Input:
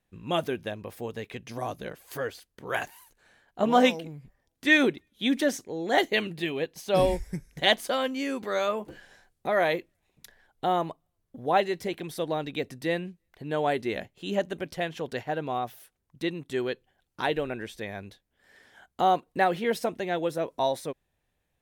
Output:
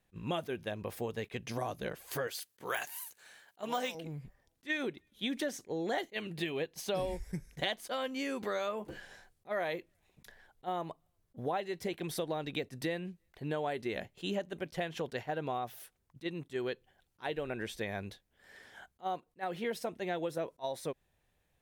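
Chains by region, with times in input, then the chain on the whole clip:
0:02.27–0:03.95: high-pass filter 80 Hz + de-essing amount 75% + spectral tilt +3 dB per octave
whole clip: parametric band 270 Hz −3 dB 0.34 octaves; downward compressor 6 to 1, threshold −34 dBFS; level that may rise only so fast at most 500 dB per second; level +1.5 dB

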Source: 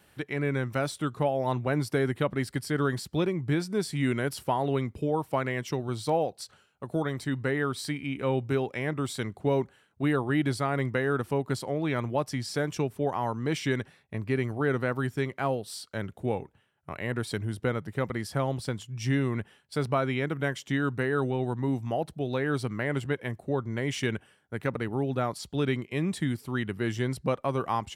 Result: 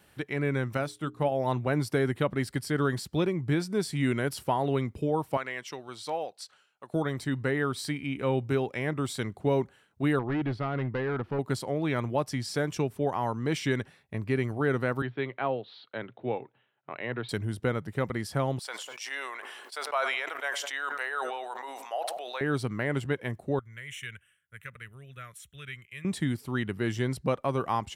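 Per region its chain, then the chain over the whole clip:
0:00.77–0:01.32: mains-hum notches 60/120/180/240/300/360/420 Hz + expander for the loud parts, over −41 dBFS
0:05.37–0:06.94: high-pass filter 1,100 Hz 6 dB per octave + high-shelf EQ 11,000 Hz −11.5 dB
0:10.19–0:11.39: gain into a clipping stage and back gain 25 dB + high-frequency loss of the air 320 metres
0:15.02–0:17.29: Chebyshev band-pass filter 120–3,900 Hz, order 5 + parametric band 170 Hz −13 dB 0.64 octaves
0:18.59–0:22.41: high-pass filter 670 Hz 24 dB per octave + feedback echo with a low-pass in the loop 99 ms, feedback 55%, low-pass 1,100 Hz, level −18 dB + level that may fall only so fast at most 30 dB per second
0:23.59–0:26.05: high-pass filter 56 Hz + guitar amp tone stack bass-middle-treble 10-0-10 + phaser with its sweep stopped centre 2,000 Hz, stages 4
whole clip: no processing

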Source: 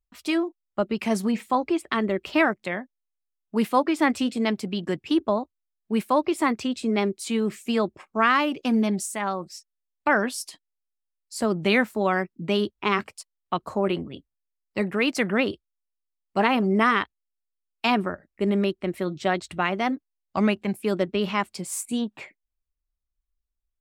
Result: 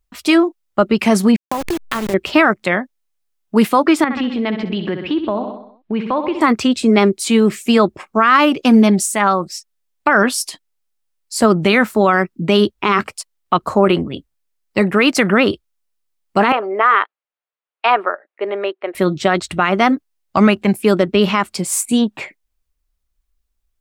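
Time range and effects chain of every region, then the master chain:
0:01.36–0:02.14: hold until the input has moved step −25 dBFS + downward compressor 16 to 1, threshold −28 dBFS
0:04.04–0:06.41: low-pass filter 3,600 Hz 24 dB per octave + repeating echo 64 ms, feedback 53%, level −11.5 dB + downward compressor 2.5 to 1, threshold −31 dBFS
0:16.52–0:18.95: high-pass filter 470 Hz 24 dB per octave + de-essing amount 45% + high-frequency loss of the air 420 metres
whole clip: dynamic equaliser 1,300 Hz, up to +6 dB, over −40 dBFS, Q 3; boost into a limiter +13.5 dB; level −1.5 dB

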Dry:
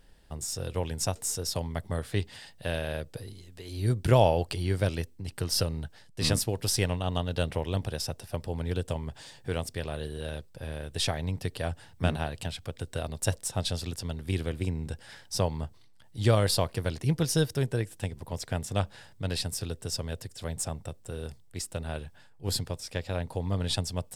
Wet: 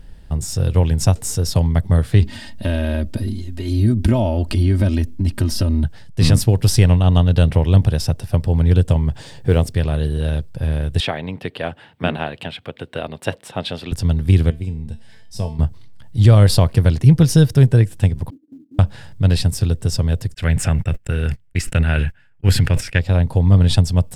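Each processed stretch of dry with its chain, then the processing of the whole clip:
0:02.22–0:05.84: parametric band 220 Hz +11.5 dB 0.59 octaves + comb filter 3.2 ms, depth 86% + downward compressor 3 to 1, threshold −30 dBFS
0:09.18–0:09.72: parametric band 450 Hz +5.5 dB 0.98 octaves + noise that follows the level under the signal 35 dB
0:11.00–0:13.92: high-pass filter 300 Hz + high shelf with overshoot 4,300 Hz −11.5 dB, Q 1.5
0:14.50–0:15.59: parametric band 1,300 Hz −9 dB 0.46 octaves + tuned comb filter 220 Hz, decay 0.36 s, mix 80%
0:18.30–0:18.79: flat-topped band-pass 290 Hz, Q 6.6 + downward compressor 10 to 1, threshold −48 dBFS + floating-point word with a short mantissa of 4 bits
0:20.34–0:22.99: noise gate −45 dBFS, range −56 dB + flat-topped bell 2,000 Hz +12 dB 1.3 octaves + level that may fall only so fast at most 66 dB per second
whole clip: bass and treble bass +11 dB, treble −3 dB; boost into a limiter +9.5 dB; level −1 dB

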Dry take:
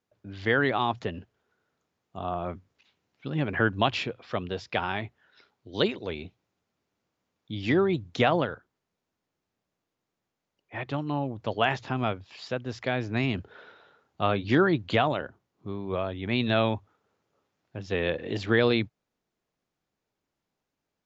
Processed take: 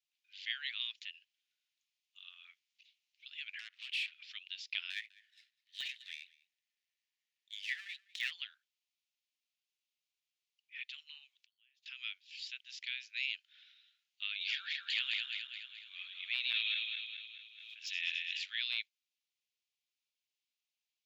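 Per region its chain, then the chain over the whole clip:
0:03.59–0:04.23: downward compressor, threshold −31 dBFS + mid-hump overdrive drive 22 dB, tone 1,400 Hz, clips at −20.5 dBFS + highs frequency-modulated by the lows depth 0.42 ms
0:04.90–0:08.31: gain on one half-wave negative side −12 dB + parametric band 1,800 Hz +14.5 dB 0.31 octaves + single-tap delay 200 ms −22.5 dB
0:11.39–0:11.86: notch filter 2,100 Hz, Q 17 + downward compressor 4 to 1, threshold −36 dBFS + gate with flip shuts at −38 dBFS, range −25 dB
0:14.31–0:18.44: feedback delay that plays each chunk backwards 106 ms, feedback 72%, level −3 dB + background raised ahead of every attack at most 56 dB per second
whole clip: Butterworth high-pass 2,500 Hz 36 dB per octave; de-essing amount 90%; high-shelf EQ 5,000 Hz −11 dB; level +3.5 dB

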